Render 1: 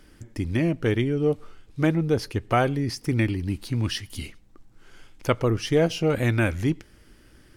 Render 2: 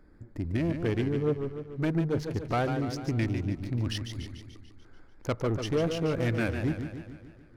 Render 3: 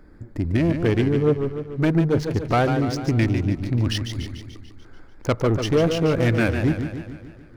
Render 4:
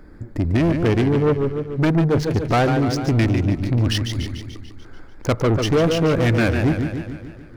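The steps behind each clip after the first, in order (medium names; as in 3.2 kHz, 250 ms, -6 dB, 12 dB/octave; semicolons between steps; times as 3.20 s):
local Wiener filter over 15 samples; saturation -17 dBFS, distortion -15 dB; modulated delay 146 ms, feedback 58%, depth 125 cents, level -7.5 dB; trim -4 dB
median filter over 3 samples; trim +8.5 dB
saturation -17 dBFS, distortion -15 dB; trim +5 dB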